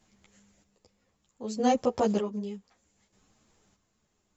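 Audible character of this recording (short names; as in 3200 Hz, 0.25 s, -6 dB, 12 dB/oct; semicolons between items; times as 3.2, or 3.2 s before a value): chopped level 0.64 Hz, depth 60%, duty 40%; a shimmering, thickened sound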